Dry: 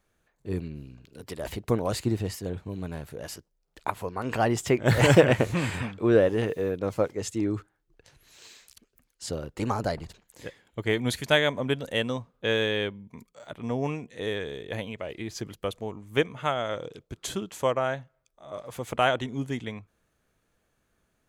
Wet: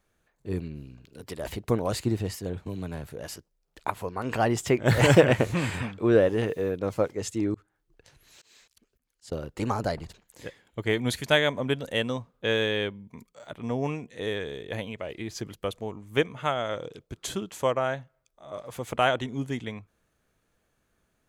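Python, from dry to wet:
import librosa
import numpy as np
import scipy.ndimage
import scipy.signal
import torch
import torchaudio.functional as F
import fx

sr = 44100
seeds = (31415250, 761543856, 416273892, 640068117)

y = fx.band_squash(x, sr, depth_pct=70, at=(2.66, 3.07))
y = fx.auto_swell(y, sr, attack_ms=244.0, at=(7.54, 9.32))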